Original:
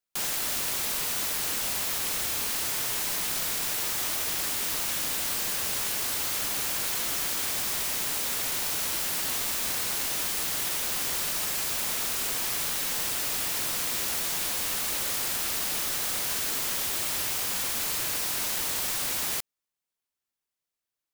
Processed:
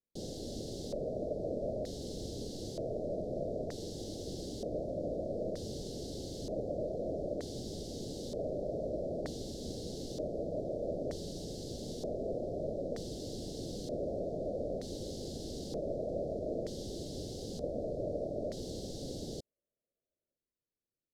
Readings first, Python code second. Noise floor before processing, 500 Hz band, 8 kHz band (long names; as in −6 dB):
below −85 dBFS, +7.0 dB, −24.0 dB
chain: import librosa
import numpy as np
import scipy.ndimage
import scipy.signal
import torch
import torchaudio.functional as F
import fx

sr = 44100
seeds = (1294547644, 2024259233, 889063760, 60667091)

y = scipy.signal.sosfilt(scipy.signal.cheby2(4, 50, [980.0, 2500.0], 'bandstop', fs=sr, output='sos'), x)
y = fx.filter_lfo_lowpass(y, sr, shape='square', hz=0.54, low_hz=630.0, high_hz=1900.0, q=6.0)
y = F.gain(torch.from_numpy(y), 3.5).numpy()